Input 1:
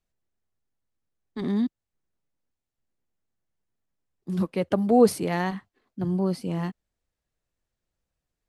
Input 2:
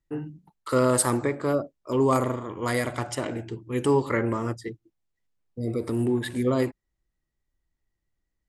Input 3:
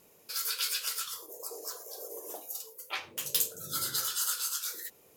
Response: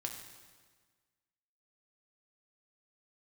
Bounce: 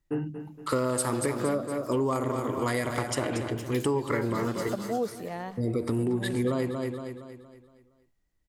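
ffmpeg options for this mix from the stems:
-filter_complex "[0:a]equalizer=frequency=630:width_type=o:width=0.69:gain=7.5,volume=-12.5dB,asplit=2[link_01][link_02];[link_02]volume=-19.5dB[link_03];[1:a]volume=3dB,asplit=2[link_04][link_05];[link_05]volume=-10dB[link_06];[2:a]lowpass=frequency=2000:poles=1,adelay=400,volume=-4dB,asplit=2[link_07][link_08];[link_08]volume=-17dB[link_09];[link_03][link_06][link_09]amix=inputs=3:normalize=0,aecho=0:1:233|466|699|932|1165|1398:1|0.44|0.194|0.0852|0.0375|0.0165[link_10];[link_01][link_04][link_07][link_10]amix=inputs=4:normalize=0,acompressor=threshold=-24dB:ratio=6"

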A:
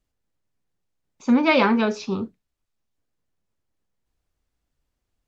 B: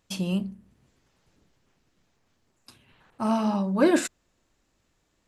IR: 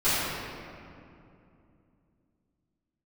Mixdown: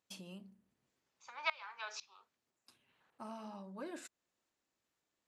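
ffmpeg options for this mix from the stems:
-filter_complex "[0:a]acompressor=threshold=-20dB:ratio=6,highpass=frequency=870:width=0.5412,highpass=frequency=870:width=1.3066,aeval=exprs='val(0)*pow(10,-24*if(lt(mod(-2*n/s,1),2*abs(-2)/1000),1-mod(-2*n/s,1)/(2*abs(-2)/1000),(mod(-2*n/s,1)-2*abs(-2)/1000)/(1-2*abs(-2)/1000))/20)':channel_layout=same,volume=-3.5dB[link_01];[1:a]acompressor=threshold=-31dB:ratio=2.5,volume=-13.5dB[link_02];[link_01][link_02]amix=inputs=2:normalize=0,highpass=frequency=340:poles=1"

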